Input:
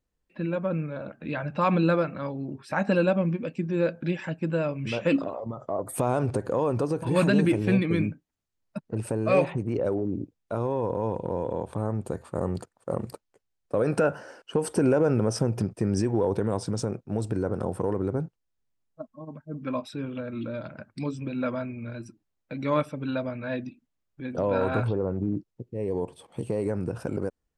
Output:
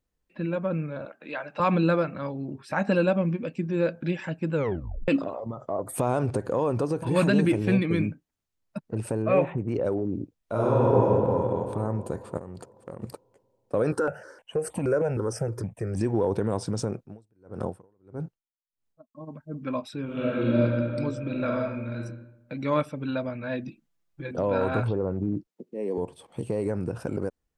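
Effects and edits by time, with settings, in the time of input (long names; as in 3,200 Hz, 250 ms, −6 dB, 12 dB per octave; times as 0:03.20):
0:01.05–0:01.60: high-pass filter 440 Hz
0:04.54: tape stop 0.54 s
0:09.22–0:09.68: moving average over 9 samples
0:10.38–0:11.03: thrown reverb, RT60 2.9 s, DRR −7 dB
0:12.37–0:13.02: downward compressor 12 to 1, threshold −34 dBFS
0:13.92–0:16.01: step-sequenced phaser 6.4 Hz 660–1,500 Hz
0:17.01–0:19.15: tremolo with a sine in dB 1.6 Hz, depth 40 dB
0:20.05–0:20.59: thrown reverb, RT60 2.3 s, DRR −9.5 dB
0:21.21–0:22.02: thrown reverb, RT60 0.86 s, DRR 0.5 dB
0:23.67–0:24.31: comb filter 5.9 ms, depth 98%
0:25.47–0:25.98: Butterworth high-pass 180 Hz 48 dB per octave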